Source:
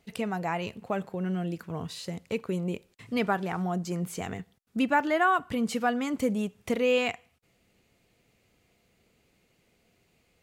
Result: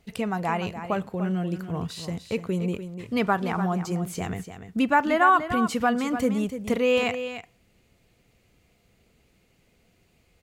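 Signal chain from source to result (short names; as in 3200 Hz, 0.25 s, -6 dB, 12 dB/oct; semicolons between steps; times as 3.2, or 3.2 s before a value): low shelf 92 Hz +9.5 dB; on a send: echo 0.295 s -10 dB; on the sum: dynamic EQ 1100 Hz, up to +5 dB, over -43 dBFS, Q 2.5; gain +2 dB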